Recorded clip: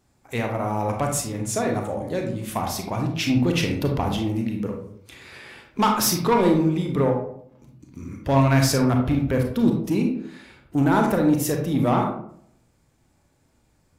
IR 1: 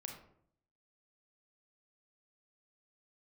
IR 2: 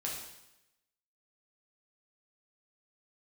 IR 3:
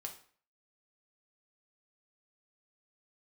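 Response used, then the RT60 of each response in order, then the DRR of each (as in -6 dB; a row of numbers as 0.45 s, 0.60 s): 1; 0.65 s, 0.90 s, 0.50 s; 2.0 dB, -3.5 dB, 2.0 dB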